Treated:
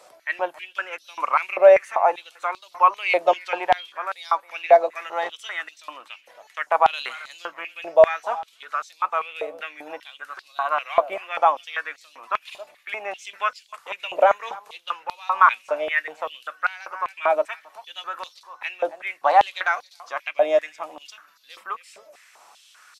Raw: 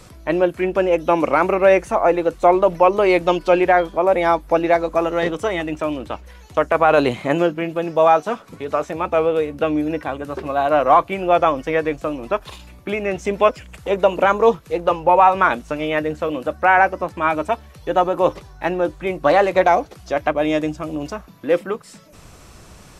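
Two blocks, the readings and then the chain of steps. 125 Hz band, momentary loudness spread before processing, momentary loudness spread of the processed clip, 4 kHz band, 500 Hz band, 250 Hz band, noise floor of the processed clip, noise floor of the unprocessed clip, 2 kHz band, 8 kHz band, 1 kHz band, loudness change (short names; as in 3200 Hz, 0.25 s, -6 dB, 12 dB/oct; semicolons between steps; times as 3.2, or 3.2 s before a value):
under -25 dB, 11 LU, 19 LU, -1.5 dB, -6.0 dB, -23.5 dB, -56 dBFS, -44 dBFS, -3.0 dB, n/a, -4.0 dB, -4.5 dB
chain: echo 0.272 s -21 dB; stepped high-pass 5.1 Hz 640–4200 Hz; gain -7 dB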